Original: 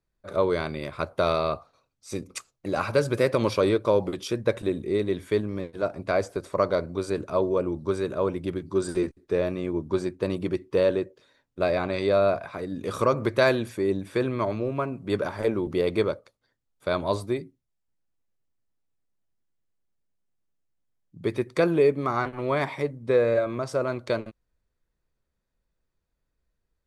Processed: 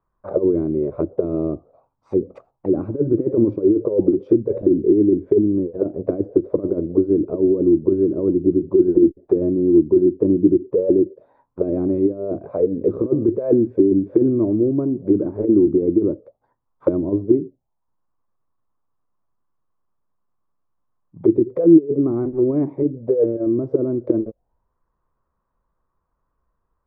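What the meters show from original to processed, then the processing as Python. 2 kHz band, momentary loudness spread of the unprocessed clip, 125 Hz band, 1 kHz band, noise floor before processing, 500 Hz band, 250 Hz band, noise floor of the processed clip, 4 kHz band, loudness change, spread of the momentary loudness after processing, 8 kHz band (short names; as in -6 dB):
under -20 dB, 10 LU, +4.5 dB, under -10 dB, -79 dBFS, +6.0 dB, +13.5 dB, -74 dBFS, under -35 dB, +8.0 dB, 8 LU, n/a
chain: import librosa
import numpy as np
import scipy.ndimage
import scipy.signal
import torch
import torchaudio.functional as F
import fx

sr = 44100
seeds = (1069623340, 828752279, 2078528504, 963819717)

y = fx.over_compress(x, sr, threshold_db=-24.0, ratio=-0.5)
y = fx.envelope_lowpass(y, sr, base_hz=320.0, top_hz=1100.0, q=6.2, full_db=-24.0, direction='down')
y = y * librosa.db_to_amplitude(2.5)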